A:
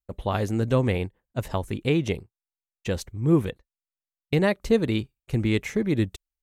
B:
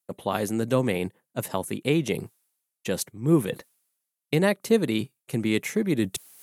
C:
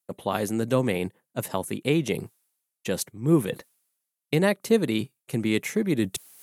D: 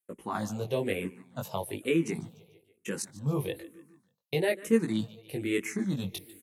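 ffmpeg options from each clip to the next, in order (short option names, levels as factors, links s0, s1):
-af "highpass=f=140:w=0.5412,highpass=f=140:w=1.3066,equalizer=f=11000:t=o:w=0.81:g=14,areverse,acompressor=mode=upward:threshold=0.0631:ratio=2.5,areverse"
-af anull
-filter_complex "[0:a]flanger=delay=17.5:depth=3.7:speed=0.43,aecho=1:1:147|294|441|588:0.112|0.0583|0.0303|0.0158,asplit=2[s0][s1];[s1]afreqshift=-1.1[s2];[s0][s2]amix=inputs=2:normalize=1"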